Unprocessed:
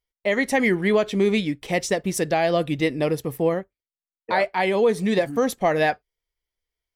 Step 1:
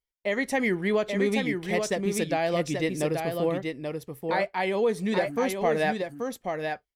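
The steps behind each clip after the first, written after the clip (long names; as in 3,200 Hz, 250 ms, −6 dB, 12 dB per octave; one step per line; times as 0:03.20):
single-tap delay 832 ms −5 dB
level −5.5 dB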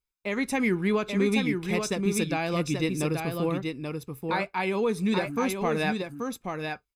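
comb filter 0.8 ms, depth 57%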